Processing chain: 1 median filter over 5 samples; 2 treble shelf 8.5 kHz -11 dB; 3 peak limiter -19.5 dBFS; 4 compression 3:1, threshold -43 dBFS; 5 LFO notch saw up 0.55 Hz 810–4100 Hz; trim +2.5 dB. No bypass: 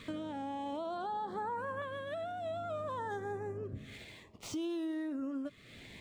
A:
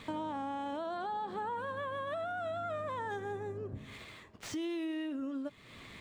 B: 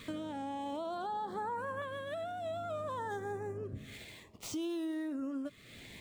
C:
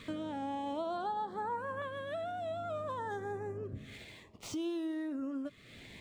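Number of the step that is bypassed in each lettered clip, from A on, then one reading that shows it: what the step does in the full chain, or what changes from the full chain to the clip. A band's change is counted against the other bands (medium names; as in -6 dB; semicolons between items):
5, 2 kHz band +2.5 dB; 2, 8 kHz band +3.0 dB; 3, mean gain reduction 1.5 dB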